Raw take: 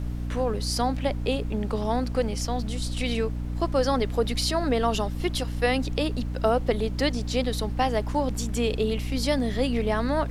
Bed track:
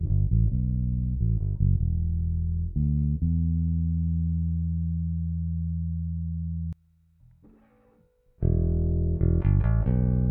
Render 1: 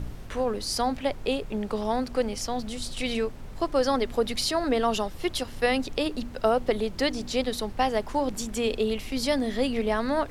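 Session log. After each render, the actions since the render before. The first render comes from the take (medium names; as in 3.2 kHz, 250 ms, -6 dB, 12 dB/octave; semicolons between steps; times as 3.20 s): de-hum 60 Hz, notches 5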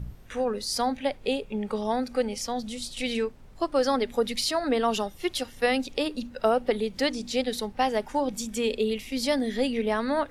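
noise print and reduce 10 dB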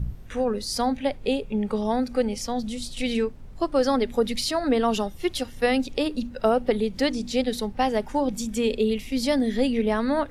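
bass shelf 290 Hz +8.5 dB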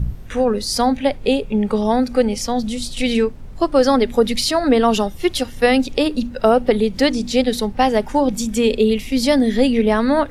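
trim +7.5 dB; peak limiter -2 dBFS, peak gain reduction 1 dB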